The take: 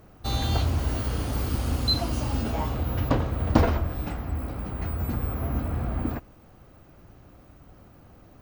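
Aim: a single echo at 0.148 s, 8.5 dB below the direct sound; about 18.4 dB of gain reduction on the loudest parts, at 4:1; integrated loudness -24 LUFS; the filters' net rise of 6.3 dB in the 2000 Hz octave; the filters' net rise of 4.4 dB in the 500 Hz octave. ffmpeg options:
-af "equalizer=f=500:t=o:g=5,equalizer=f=2k:t=o:g=8,acompressor=threshold=-37dB:ratio=4,aecho=1:1:148:0.376,volume=14.5dB"

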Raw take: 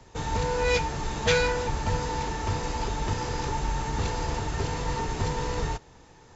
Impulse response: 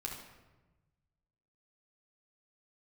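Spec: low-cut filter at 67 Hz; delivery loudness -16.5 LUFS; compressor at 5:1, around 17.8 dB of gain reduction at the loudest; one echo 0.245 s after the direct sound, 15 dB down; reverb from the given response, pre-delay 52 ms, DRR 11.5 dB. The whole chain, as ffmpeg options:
-filter_complex "[0:a]highpass=67,acompressor=threshold=-39dB:ratio=5,aecho=1:1:245:0.178,asplit=2[a][b];[1:a]atrim=start_sample=2205,adelay=52[c];[b][c]afir=irnorm=-1:irlink=0,volume=-11.5dB[d];[a][d]amix=inputs=2:normalize=0,volume=24dB"

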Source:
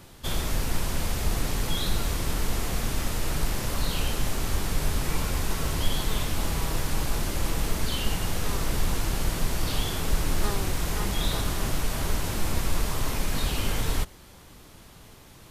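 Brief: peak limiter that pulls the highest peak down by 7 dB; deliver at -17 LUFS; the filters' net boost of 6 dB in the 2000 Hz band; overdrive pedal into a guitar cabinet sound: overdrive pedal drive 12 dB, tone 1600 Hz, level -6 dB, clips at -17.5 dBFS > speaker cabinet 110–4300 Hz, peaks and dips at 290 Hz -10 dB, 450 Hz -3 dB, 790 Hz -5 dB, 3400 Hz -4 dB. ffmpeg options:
-filter_complex "[0:a]equalizer=f=2k:t=o:g=8,alimiter=limit=-17.5dB:level=0:latency=1,asplit=2[a][b];[b]highpass=f=720:p=1,volume=12dB,asoftclip=type=tanh:threshold=-17.5dB[c];[a][c]amix=inputs=2:normalize=0,lowpass=f=1.6k:p=1,volume=-6dB,highpass=110,equalizer=f=290:t=q:w=4:g=-10,equalizer=f=450:t=q:w=4:g=-3,equalizer=f=790:t=q:w=4:g=-5,equalizer=f=3.4k:t=q:w=4:g=-4,lowpass=f=4.3k:w=0.5412,lowpass=f=4.3k:w=1.3066,volume=15dB"

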